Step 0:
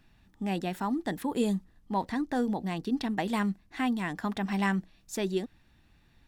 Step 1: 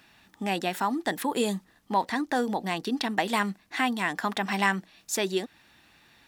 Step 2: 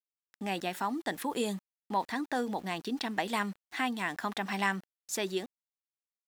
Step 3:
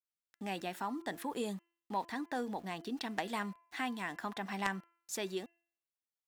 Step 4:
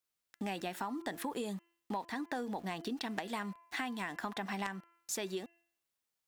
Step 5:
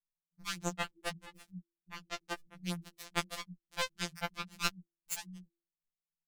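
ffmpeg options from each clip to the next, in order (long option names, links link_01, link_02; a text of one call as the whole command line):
ffmpeg -i in.wav -filter_complex "[0:a]highpass=frequency=680:poles=1,asplit=2[link_01][link_02];[link_02]acompressor=threshold=-42dB:ratio=6,volume=0dB[link_03];[link_01][link_03]amix=inputs=2:normalize=0,volume=6dB" out.wav
ffmpeg -i in.wav -af "aeval=exprs='val(0)*gte(abs(val(0)),0.00596)':channel_layout=same,volume=-5.5dB" out.wav
ffmpeg -i in.wav -af "bandreject=frequency=339.4:width_type=h:width=4,bandreject=frequency=678.8:width_type=h:width=4,bandreject=frequency=1018.2:width_type=h:width=4,bandreject=frequency=1357.6:width_type=h:width=4,bandreject=frequency=1697:width_type=h:width=4,bandreject=frequency=2036.4:width_type=h:width=4,bandreject=frequency=2375.8:width_type=h:width=4,bandreject=frequency=2715.2:width_type=h:width=4,bandreject=frequency=3054.6:width_type=h:width=4,aeval=exprs='0.2*(cos(1*acos(clip(val(0)/0.2,-1,1)))-cos(1*PI/2))+0.0708*(cos(3*acos(clip(val(0)/0.2,-1,1)))-cos(3*PI/2))+0.0224*(cos(5*acos(clip(val(0)/0.2,-1,1)))-cos(5*PI/2))+0.00112*(cos(7*acos(clip(val(0)/0.2,-1,1)))-cos(7*PI/2))':channel_layout=same,adynamicequalizer=threshold=0.00316:dfrequency=1800:dqfactor=0.7:tfrequency=1800:tqfactor=0.7:attack=5:release=100:ratio=0.375:range=2:mode=cutabove:tftype=highshelf,volume=2dB" out.wav
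ffmpeg -i in.wav -af "acompressor=threshold=-43dB:ratio=6,volume=7.5dB" out.wav
ffmpeg -i in.wav -filter_complex "[0:a]afftfilt=real='re*pow(10,11/40*sin(2*PI*(1.6*log(max(b,1)*sr/1024/100)/log(2)-(-2.6)*(pts-256)/sr)))':imag='im*pow(10,11/40*sin(2*PI*(1.6*log(max(b,1)*sr/1024/100)/log(2)-(-2.6)*(pts-256)/sr)))':win_size=1024:overlap=0.75,acrossover=split=120[link_01][link_02];[link_02]acrusher=bits=3:mix=0:aa=0.5[link_03];[link_01][link_03]amix=inputs=2:normalize=0,afftfilt=real='re*2.83*eq(mod(b,8),0)':imag='im*2.83*eq(mod(b,8),0)':win_size=2048:overlap=0.75,volume=13dB" out.wav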